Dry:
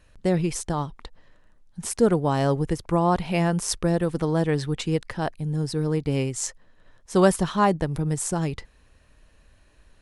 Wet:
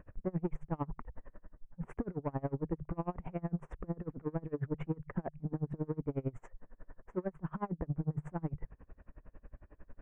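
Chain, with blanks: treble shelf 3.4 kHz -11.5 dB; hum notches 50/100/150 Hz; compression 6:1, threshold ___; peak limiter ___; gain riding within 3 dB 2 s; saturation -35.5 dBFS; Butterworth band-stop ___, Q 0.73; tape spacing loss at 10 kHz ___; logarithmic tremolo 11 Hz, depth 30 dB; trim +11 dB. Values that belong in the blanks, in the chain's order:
-31 dBFS, -27.5 dBFS, 4.4 kHz, 39 dB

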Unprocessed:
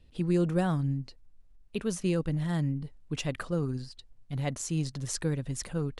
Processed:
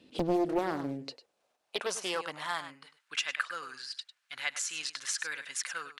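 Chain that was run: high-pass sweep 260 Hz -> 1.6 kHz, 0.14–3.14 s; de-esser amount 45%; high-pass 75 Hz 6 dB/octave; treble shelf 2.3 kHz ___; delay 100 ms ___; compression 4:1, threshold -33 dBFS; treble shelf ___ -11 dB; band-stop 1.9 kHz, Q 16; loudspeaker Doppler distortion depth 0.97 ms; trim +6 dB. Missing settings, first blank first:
+6 dB, -13.5 dB, 7.7 kHz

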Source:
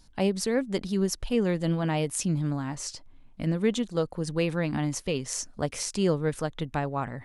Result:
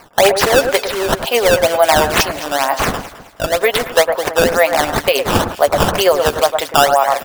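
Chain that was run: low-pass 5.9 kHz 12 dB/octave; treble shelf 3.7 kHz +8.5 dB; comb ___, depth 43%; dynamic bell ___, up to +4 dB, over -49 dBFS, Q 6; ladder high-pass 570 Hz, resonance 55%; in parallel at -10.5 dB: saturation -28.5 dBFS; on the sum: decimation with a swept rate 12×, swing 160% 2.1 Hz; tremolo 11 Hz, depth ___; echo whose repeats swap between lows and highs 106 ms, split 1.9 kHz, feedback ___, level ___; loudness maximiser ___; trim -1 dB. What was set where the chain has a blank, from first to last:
7.4 ms, 2.2 kHz, 42%, 54%, -9 dB, +27.5 dB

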